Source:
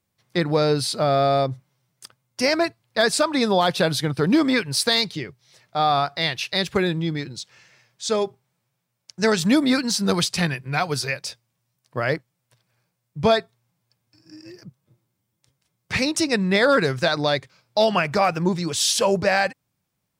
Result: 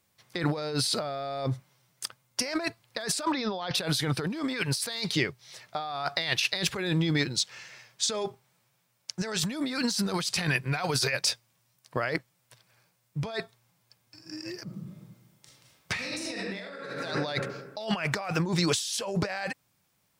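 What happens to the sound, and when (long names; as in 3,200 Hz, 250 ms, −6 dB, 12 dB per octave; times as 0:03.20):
0:03.32–0:03.75: Butterworth low-pass 5,900 Hz 72 dB per octave
0:14.63–0:17.03: thrown reverb, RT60 1.2 s, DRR −5 dB
whole clip: low-shelf EQ 460 Hz −7 dB; compressor whose output falls as the input rises −31 dBFS, ratio −1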